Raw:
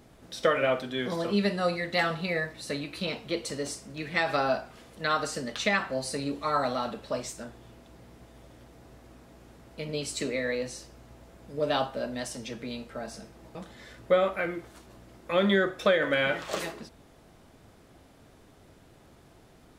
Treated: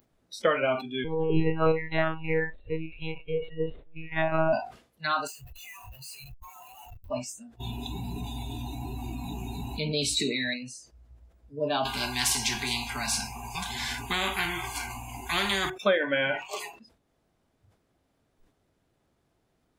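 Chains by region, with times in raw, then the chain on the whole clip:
0:01.04–0:04.53: spectrum averaged block by block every 50 ms + parametric band 460 Hz +10 dB 0.87 octaves + one-pitch LPC vocoder at 8 kHz 160 Hz
0:05.27–0:07.10: guitar amp tone stack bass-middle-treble 10-0-10 + downward compressor 2.5 to 1, threshold −37 dBFS + comparator with hysteresis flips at −45.5 dBFS
0:07.60–0:10.54: parametric band 3,800 Hz +13.5 dB 0.22 octaves + envelope flattener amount 70%
0:11.85–0:15.70: single-tap delay 407 ms −23 dB + every bin compressed towards the loudest bin 4 to 1
whole clip: upward compression, threshold −39 dBFS; noise reduction from a noise print of the clip's start 24 dB; level that may fall only so fast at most 130 dB per second

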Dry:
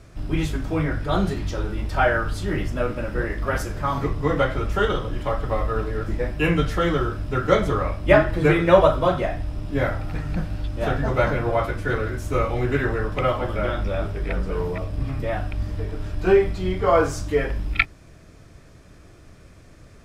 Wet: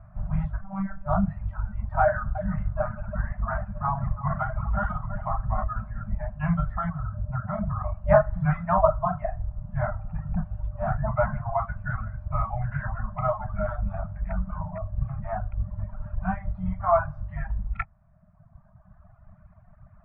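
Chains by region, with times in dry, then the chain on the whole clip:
0:00.61–0:01.06: variable-slope delta modulation 64 kbit/s + floating-point word with a short mantissa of 2 bits + phases set to zero 194 Hz
0:02.02–0:05.64: low-pass filter 3,100 Hz 6 dB per octave + multi-tap delay 56/330/498/779 ms −6.5/−9/−20/−12.5 dB
0:06.89–0:07.95: high-pass filter 58 Hz + spectral tilt −1.5 dB per octave + downward compressor 2 to 1, threshold −22 dBFS
whole clip: brick-wall band-stop 220–590 Hz; reverb reduction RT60 1.7 s; low-pass filter 1,300 Hz 24 dB per octave

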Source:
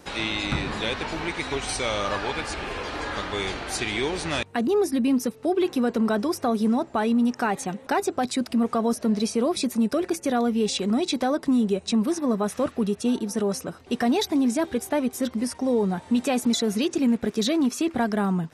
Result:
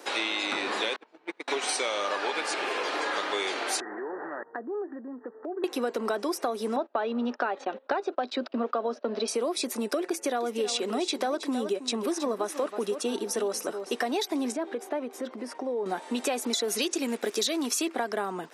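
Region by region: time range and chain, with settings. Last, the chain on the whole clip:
0:00.96–0:01.48: noise gate −26 dBFS, range −36 dB + spectral tilt −2.5 dB per octave
0:03.80–0:05.64: Chebyshev low-pass filter 1,900 Hz, order 10 + downward compressor, threshold −34 dBFS
0:06.76–0:09.28: noise gate −36 dBFS, range −21 dB + loudspeaker in its box 220–4,100 Hz, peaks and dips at 240 Hz +5 dB, 580 Hz +6 dB, 1,400 Hz +4 dB, 2,100 Hz −6 dB
0:10.06–0:13.97: single-tap delay 321 ms −12.5 dB + one half of a high-frequency compander decoder only
0:14.52–0:15.86: low-pass filter 1,400 Hz 6 dB per octave + downward compressor, threshold −27 dBFS
0:16.68–0:17.88: high-shelf EQ 3,100 Hz +9 dB + one half of a high-frequency compander decoder only
whole clip: high-pass filter 330 Hz 24 dB per octave; downward compressor, threshold −29 dBFS; level +3.5 dB

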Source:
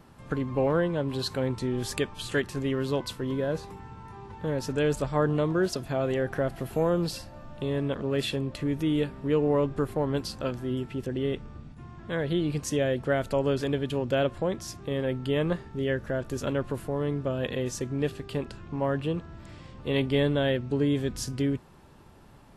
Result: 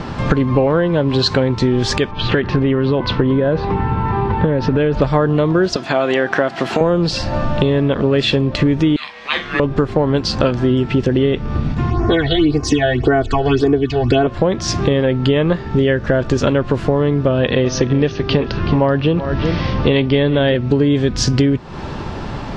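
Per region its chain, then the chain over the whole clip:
0:02.11–0:05.02: high-frequency loss of the air 290 metres + downward compressor 5 to 1, threshold −29 dBFS
0:05.76–0:06.81: high-pass filter 320 Hz + parametric band 470 Hz −7 dB 0.79 octaves
0:08.96–0:09.60: high-pass filter 1,300 Hz 24 dB per octave + ring modulation 700 Hz + double-tracking delay 44 ms −9 dB
0:11.90–0:14.27: comb filter 2.7 ms, depth 94% + all-pass phaser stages 8, 1.8 Hz, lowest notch 300–3,600 Hz
0:17.26–0:20.55: Butterworth low-pass 6,400 Hz 96 dB per octave + single-tap delay 379 ms −15.5 dB
whole clip: low-pass filter 5,700 Hz 24 dB per octave; downward compressor 8 to 1, threshold −40 dBFS; boost into a limiter +29 dB; level −1 dB

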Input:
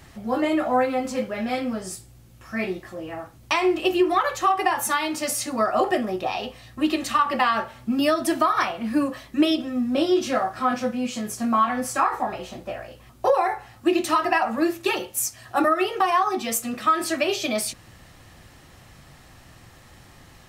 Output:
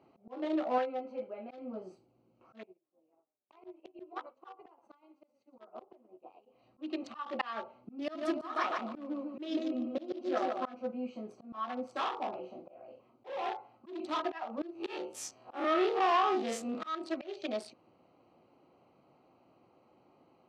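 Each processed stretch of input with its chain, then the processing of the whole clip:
0:00.78–0:01.51: low-pass filter 4,100 Hz + low-shelf EQ 340 Hz −10.5 dB + notch filter 1,100 Hz, Q 6.5
0:02.63–0:06.46: echo with shifted repeats 117 ms, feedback 36%, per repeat −36 Hz, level −13.5 dB + amplitude modulation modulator 280 Hz, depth 40% + expander for the loud parts 2.5 to 1, over −41 dBFS
0:08.00–0:10.69: mu-law and A-law mismatch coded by A + repeating echo 147 ms, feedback 41%, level −4 dB
0:11.91–0:14.20: double-tracking delay 43 ms −6 dB + hard clipping −20.5 dBFS
0:14.75–0:16.95: spectrum smeared in time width 87 ms + leveller curve on the samples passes 2
whole clip: adaptive Wiener filter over 25 samples; Chebyshev band-pass filter 330–4,400 Hz, order 2; volume swells 256 ms; level −7 dB

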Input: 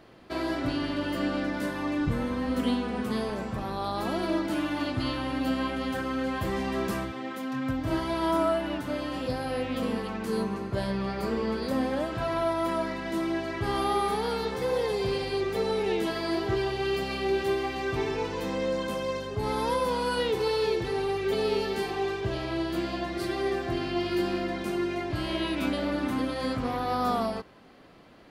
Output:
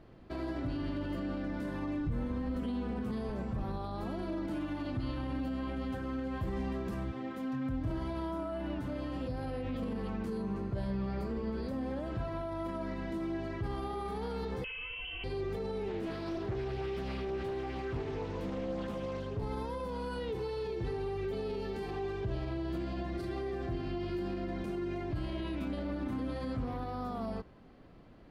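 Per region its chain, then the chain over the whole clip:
0:14.64–0:15.24: low-shelf EQ 160 Hz +10.5 dB + voice inversion scrambler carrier 3,100 Hz
0:15.88–0:19.43: high-pass filter 48 Hz + highs frequency-modulated by the lows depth 0.58 ms
whole clip: low-shelf EQ 140 Hz +6 dB; brickwall limiter −24.5 dBFS; spectral tilt −2 dB per octave; level −7.5 dB

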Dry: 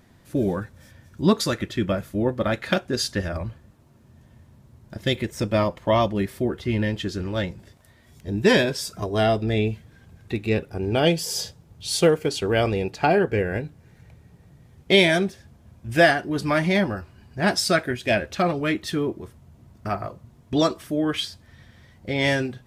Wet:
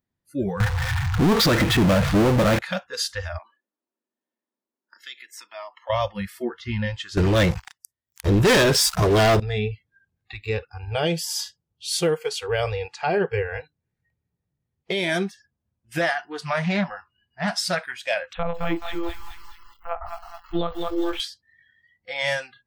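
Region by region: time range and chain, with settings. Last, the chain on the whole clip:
0:00.60–0:02.59: high-frequency loss of the air 250 metres + power curve on the samples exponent 0.35
0:03.38–0:05.90: Butterworth high-pass 260 Hz + downward compressor 2 to 1, threshold −39 dBFS
0:07.17–0:09.40: parametric band 220 Hz −4.5 dB 0.44 octaves + leveller curve on the samples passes 5
0:16.01–0:17.78: high-shelf EQ 6,800 Hz −4.5 dB + highs frequency-modulated by the lows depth 0.23 ms
0:18.33–0:21.20: parametric band 2,200 Hz −4 dB 1.5 octaves + one-pitch LPC vocoder at 8 kHz 170 Hz + feedback echo at a low word length 213 ms, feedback 55%, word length 7 bits, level −5 dB
whole clip: noise reduction from a noise print of the clip's start 29 dB; parametric band 670 Hz −2.5 dB 0.23 octaves; brickwall limiter −13 dBFS

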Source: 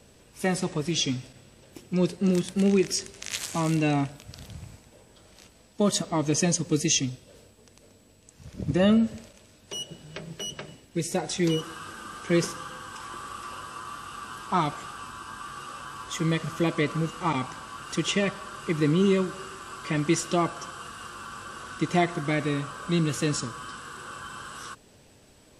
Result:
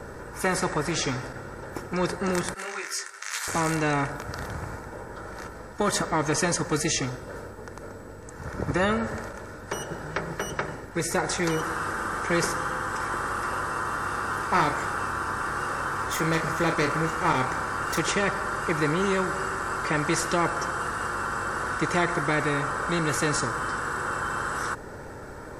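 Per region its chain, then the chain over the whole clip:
0:02.54–0:03.48: high-pass filter 1,500 Hz + micro pitch shift up and down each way 28 cents
0:13.97–0:18.01: phase distortion by the signal itself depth 0.11 ms + double-tracking delay 31 ms −7 dB
whole clip: high shelf with overshoot 2,100 Hz −11.5 dB, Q 3; comb filter 2.2 ms, depth 41%; every bin compressed towards the loudest bin 2 to 1; level −1.5 dB

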